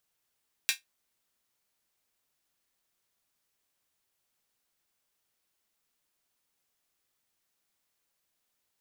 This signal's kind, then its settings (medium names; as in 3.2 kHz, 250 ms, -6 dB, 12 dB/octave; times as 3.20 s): closed hi-hat, high-pass 2.2 kHz, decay 0.15 s